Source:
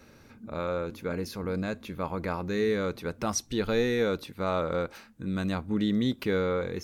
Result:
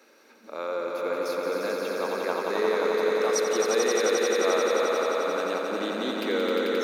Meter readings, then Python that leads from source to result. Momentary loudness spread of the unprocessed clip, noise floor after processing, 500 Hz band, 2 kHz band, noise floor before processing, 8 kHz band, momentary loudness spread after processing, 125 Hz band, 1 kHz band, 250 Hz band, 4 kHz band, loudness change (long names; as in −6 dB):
8 LU, −56 dBFS, +6.0 dB, +6.0 dB, −55 dBFS, +6.5 dB, 7 LU, below −15 dB, +6.0 dB, −3.0 dB, +6.0 dB, +4.0 dB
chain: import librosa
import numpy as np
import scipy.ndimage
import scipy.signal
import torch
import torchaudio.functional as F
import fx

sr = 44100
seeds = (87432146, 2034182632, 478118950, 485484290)

p1 = scipy.signal.sosfilt(scipy.signal.butter(4, 320.0, 'highpass', fs=sr, output='sos'), x)
y = p1 + fx.echo_swell(p1, sr, ms=88, loudest=5, wet_db=-4.5, dry=0)